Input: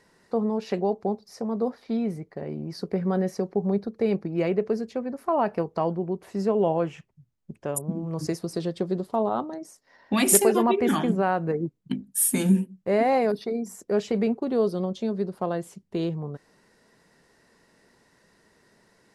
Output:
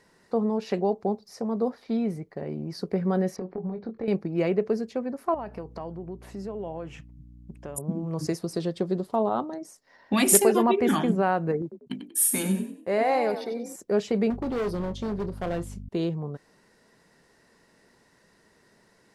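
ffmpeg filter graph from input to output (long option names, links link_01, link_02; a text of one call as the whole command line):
ffmpeg -i in.wav -filter_complex "[0:a]asettb=1/sr,asplit=3[link_01][link_02][link_03];[link_01]atrim=end=3.364[link_04];[link_02]atrim=start=3.36:end=4.08,asetpts=PTS-STARTPTS,afade=type=in:duration=0.004:curve=qsin,afade=type=out:start_time=0.716:duration=0.004:curve=qsin,lowpass=2800,acompressor=threshold=-29dB:ratio=10:attack=3.2:release=140:knee=1:detection=peak,asplit=2[link_05][link_06];[link_06]adelay=22,volume=-5.5dB[link_07];[link_05][link_07]amix=inputs=2:normalize=0,atrim=end_sample=31752[link_08];[link_03]atrim=start=4.076[link_09];[link_04][link_08]acrossfade=duration=0.004:curve1=hsin:curve2=qsin[link_10];[link_10][link_09]acrossfade=duration=0.004:curve1=qsin:curve2=hsin,asettb=1/sr,asplit=3[link_11][link_12][link_13];[link_11]atrim=end=5.344[link_14];[link_12]atrim=start=5.34:end=7.78,asetpts=PTS-STARTPTS,afade=type=in:duration=0.004:curve=qsin,afade=type=out:start_time=2.436:duration=0.004:curve=qsin,acompressor=threshold=-37dB:ratio=2.5:attack=3.2:release=140:knee=1:detection=peak,aeval=exprs='val(0)+0.00447*(sin(2*PI*60*n/s)+sin(2*PI*2*60*n/s)/2+sin(2*PI*3*60*n/s)/3+sin(2*PI*4*60*n/s)/4+sin(2*PI*5*60*n/s)/5)':channel_layout=same[link_15];[link_13]atrim=start=7.776[link_16];[link_14][link_15]acrossfade=duration=0.004:curve1=hsin:curve2=qsin[link_17];[link_17][link_16]acrossfade=duration=0.004:curve1=qsin:curve2=hsin,asettb=1/sr,asplit=3[link_18][link_19][link_20];[link_18]atrim=end=11.624[link_21];[link_19]atrim=start=11.62:end=13.76,asetpts=PTS-STARTPTS,afade=type=in:duration=0.004:curve=qsin,afade=type=out:start_time=2.136:duration=0.004:curve=qsin,agate=range=-33dB:threshold=-48dB:ratio=3:release=100:detection=peak,lowshelf=frequency=320:gain=-9,asplit=5[link_22][link_23][link_24][link_25][link_26];[link_23]adelay=94,afreqshift=40,volume=-9dB[link_27];[link_24]adelay=188,afreqshift=80,volume=-18.9dB[link_28];[link_25]adelay=282,afreqshift=120,volume=-28.8dB[link_29];[link_26]adelay=376,afreqshift=160,volume=-38.7dB[link_30];[link_22][link_27][link_28][link_29][link_30]amix=inputs=5:normalize=0,atrim=end_sample=94374[link_31];[link_20]atrim=start=13.756[link_32];[link_21][link_31]acrossfade=duration=0.004:curve1=hsin:curve2=qsin[link_33];[link_33][link_32]acrossfade=duration=0.004:curve1=qsin:curve2=hsin,asettb=1/sr,asplit=3[link_34][link_35][link_36];[link_34]atrim=end=14.304[link_37];[link_35]atrim=start=14.3:end=15.89,asetpts=PTS-STARTPTS,afade=type=in:duration=0.004:curve=qsin,afade=type=out:start_time=1.586:duration=0.004:curve=qsin,aeval=exprs='val(0)+0.0141*(sin(2*PI*50*n/s)+sin(2*PI*2*50*n/s)/2+sin(2*PI*3*50*n/s)/3+sin(2*PI*4*50*n/s)/4+sin(2*PI*5*50*n/s)/5)':channel_layout=same,asoftclip=type=hard:threshold=-25.5dB,asplit=2[link_38][link_39];[link_39]adelay=29,volume=-12.5dB[link_40];[link_38][link_40]amix=inputs=2:normalize=0,atrim=end_sample=70119[link_41];[link_36]atrim=start=15.886[link_42];[link_37][link_41]acrossfade=duration=0.004:curve1=hsin:curve2=qsin[link_43];[link_43][link_42]acrossfade=duration=0.004:curve1=qsin:curve2=hsin" out.wav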